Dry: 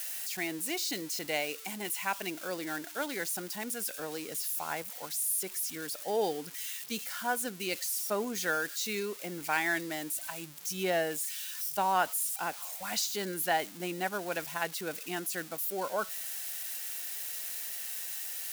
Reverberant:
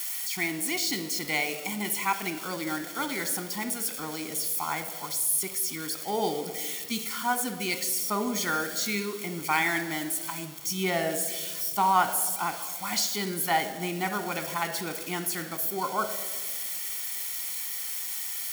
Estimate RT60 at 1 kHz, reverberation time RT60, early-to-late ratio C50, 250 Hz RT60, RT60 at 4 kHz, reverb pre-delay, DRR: 1.4 s, 1.5 s, 11.0 dB, 2.3 s, 1.0 s, 16 ms, 9.0 dB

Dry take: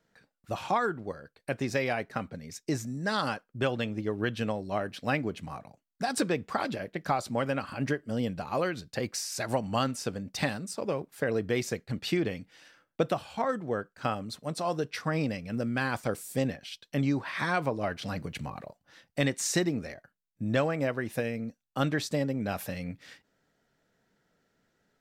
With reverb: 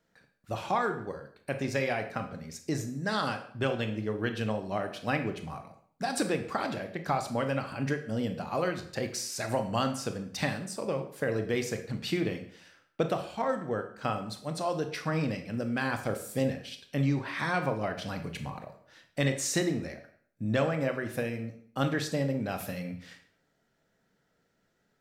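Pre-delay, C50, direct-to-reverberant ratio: 22 ms, 10.0 dB, 6.5 dB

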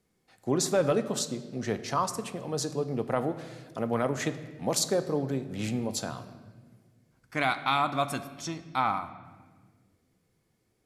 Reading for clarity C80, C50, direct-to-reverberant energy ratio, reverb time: 14.0 dB, 12.5 dB, 9.0 dB, 1.5 s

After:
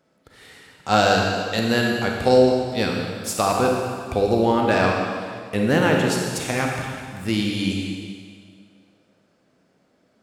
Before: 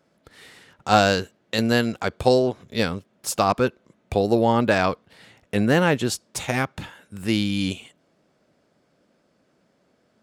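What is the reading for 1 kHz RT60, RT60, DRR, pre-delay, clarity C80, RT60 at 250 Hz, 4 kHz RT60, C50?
2.0 s, 2.0 s, -0.5 dB, 27 ms, 2.5 dB, 2.0 s, 1.9 s, 0.5 dB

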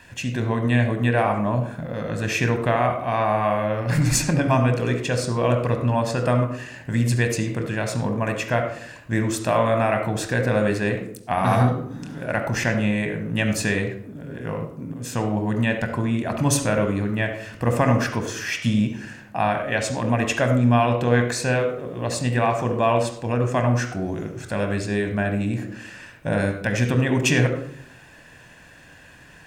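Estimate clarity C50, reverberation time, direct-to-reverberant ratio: 7.5 dB, 0.70 s, 5.0 dB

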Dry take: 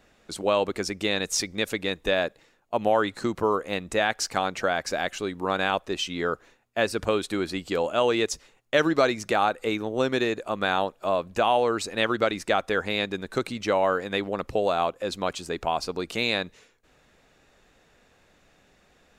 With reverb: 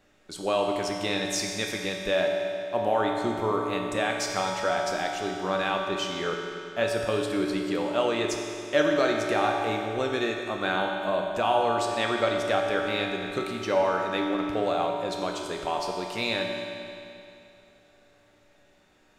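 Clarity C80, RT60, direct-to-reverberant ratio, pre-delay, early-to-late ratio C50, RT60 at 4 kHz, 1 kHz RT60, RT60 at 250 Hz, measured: 2.5 dB, 2.7 s, -0.5 dB, 3 ms, 1.5 dB, 2.6 s, 2.7 s, 2.7 s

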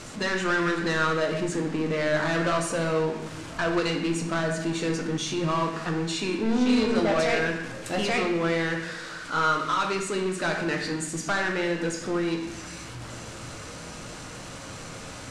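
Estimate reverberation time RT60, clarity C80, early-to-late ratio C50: 0.95 s, 8.0 dB, 5.5 dB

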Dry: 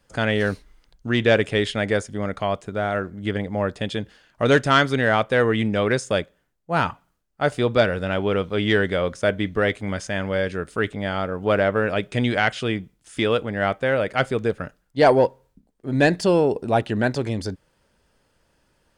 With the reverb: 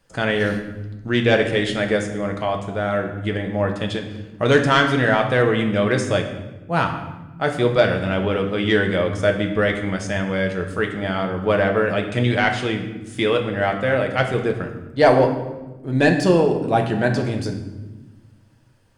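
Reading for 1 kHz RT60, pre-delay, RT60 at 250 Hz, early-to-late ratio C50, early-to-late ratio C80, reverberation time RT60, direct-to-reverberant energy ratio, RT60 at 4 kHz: 1.0 s, 5 ms, 2.0 s, 7.5 dB, 10.0 dB, 1.2 s, 3.0 dB, 0.80 s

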